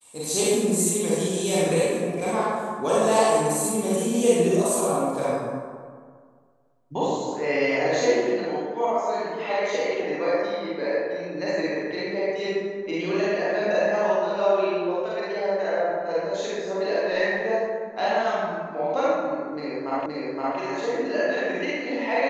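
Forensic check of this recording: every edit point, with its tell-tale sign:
20.06 repeat of the last 0.52 s

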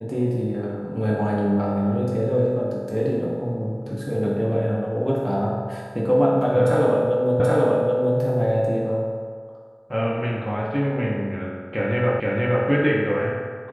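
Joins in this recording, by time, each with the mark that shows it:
7.4 repeat of the last 0.78 s
12.2 repeat of the last 0.47 s

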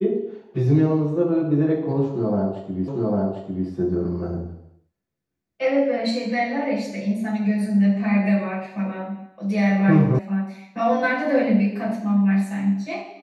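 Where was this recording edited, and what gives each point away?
2.88 repeat of the last 0.8 s
10.19 sound cut off

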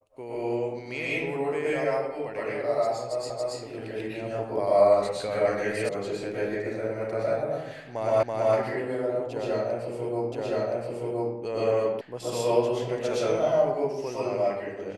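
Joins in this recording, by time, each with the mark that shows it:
3.3 repeat of the last 0.28 s
5.89 sound cut off
8.23 repeat of the last 0.33 s
10.32 repeat of the last 1.02 s
12.01 sound cut off

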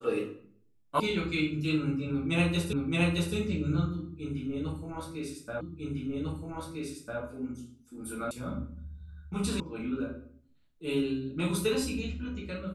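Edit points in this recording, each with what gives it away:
1 sound cut off
2.73 repeat of the last 0.62 s
5.61 repeat of the last 1.6 s
8.31 sound cut off
9.6 sound cut off

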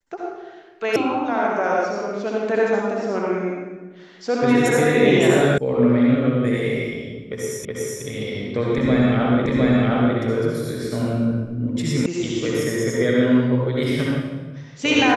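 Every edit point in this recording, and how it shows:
0.96 sound cut off
5.58 sound cut off
7.65 repeat of the last 0.37 s
9.46 repeat of the last 0.71 s
12.06 sound cut off

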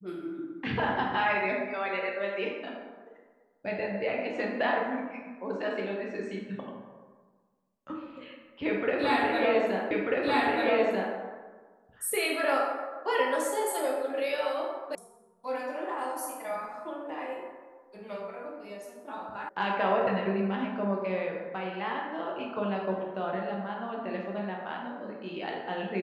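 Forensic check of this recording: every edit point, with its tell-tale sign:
9.91 repeat of the last 1.24 s
14.95 sound cut off
19.49 sound cut off

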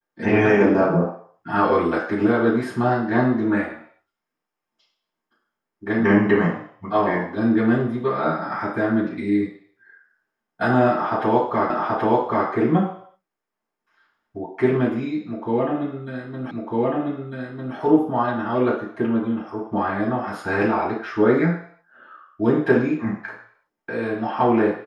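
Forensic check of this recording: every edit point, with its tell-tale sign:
11.7 repeat of the last 0.78 s
16.51 repeat of the last 1.25 s

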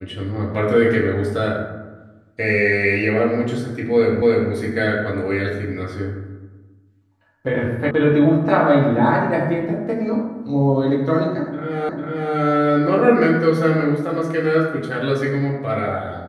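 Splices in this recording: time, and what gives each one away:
4.22 repeat of the last 0.29 s
7.91 sound cut off
11.89 repeat of the last 0.45 s

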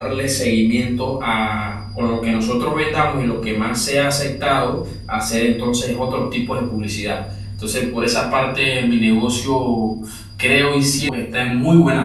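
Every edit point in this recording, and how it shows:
11.09 sound cut off

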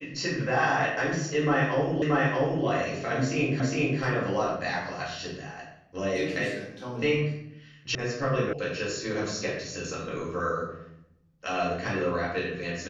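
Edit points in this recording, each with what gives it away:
2.02 repeat of the last 0.63 s
3.6 repeat of the last 0.41 s
7.95 sound cut off
8.53 sound cut off

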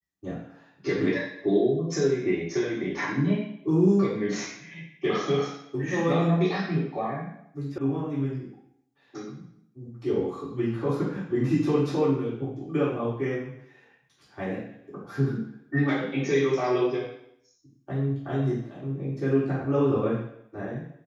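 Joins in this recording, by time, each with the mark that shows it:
7.78 sound cut off

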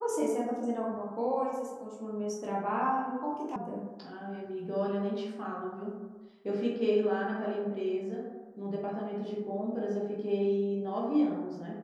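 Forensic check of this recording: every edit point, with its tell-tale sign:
3.56 sound cut off

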